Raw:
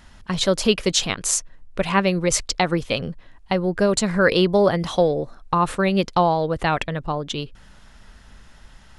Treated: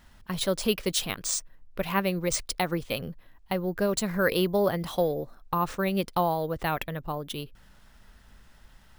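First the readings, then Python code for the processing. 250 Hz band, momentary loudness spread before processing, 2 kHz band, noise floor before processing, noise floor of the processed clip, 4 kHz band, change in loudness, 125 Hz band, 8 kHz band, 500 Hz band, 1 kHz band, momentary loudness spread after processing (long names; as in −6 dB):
−7.5 dB, 10 LU, −7.5 dB, −48 dBFS, −56 dBFS, −8.0 dB, −7.5 dB, −7.5 dB, −7.5 dB, −7.5 dB, −7.5 dB, 10 LU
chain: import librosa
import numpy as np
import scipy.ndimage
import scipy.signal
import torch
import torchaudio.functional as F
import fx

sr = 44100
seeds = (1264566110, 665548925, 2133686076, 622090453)

y = np.repeat(x[::3], 3)[:len(x)]
y = F.gain(torch.from_numpy(y), -7.5).numpy()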